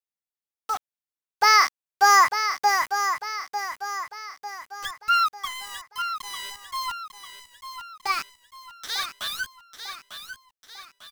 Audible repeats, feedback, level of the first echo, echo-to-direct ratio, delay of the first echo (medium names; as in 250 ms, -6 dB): 4, 47%, -9.0 dB, -8.0 dB, 898 ms